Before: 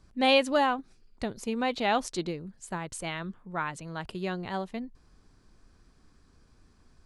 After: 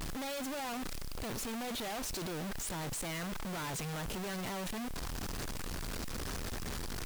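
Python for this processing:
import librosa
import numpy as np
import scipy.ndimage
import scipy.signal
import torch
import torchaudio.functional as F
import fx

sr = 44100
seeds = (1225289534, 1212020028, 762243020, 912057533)

y = np.sign(x) * np.sqrt(np.mean(np.square(x)))
y = fx.quant_dither(y, sr, seeds[0], bits=8, dither='triangular')
y = fx.vibrato(y, sr, rate_hz=0.98, depth_cents=80.0)
y = y * librosa.db_to_amplitude(-6.5)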